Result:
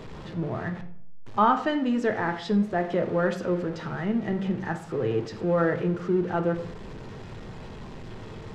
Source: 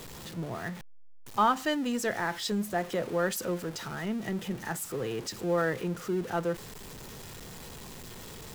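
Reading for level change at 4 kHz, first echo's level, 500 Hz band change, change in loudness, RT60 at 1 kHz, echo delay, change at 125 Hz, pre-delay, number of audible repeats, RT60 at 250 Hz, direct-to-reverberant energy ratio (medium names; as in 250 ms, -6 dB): -4.0 dB, no echo, +5.0 dB, +4.5 dB, 0.55 s, no echo, +7.0 dB, 4 ms, no echo, 0.80 s, 6.0 dB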